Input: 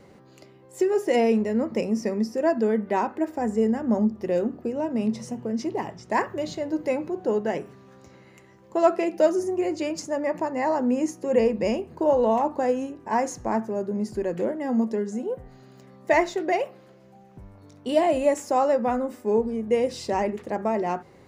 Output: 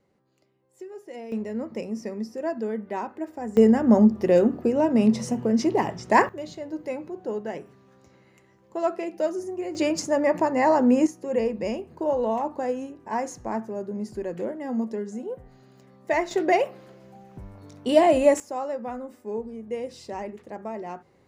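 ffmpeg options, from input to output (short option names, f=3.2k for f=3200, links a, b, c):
-af "asetnsamples=n=441:p=0,asendcmd='1.32 volume volume -6.5dB;3.57 volume volume 6dB;6.29 volume volume -6dB;9.75 volume volume 4.5dB;11.07 volume volume -4dB;16.31 volume volume 3.5dB;18.4 volume volume -9dB',volume=-18dB"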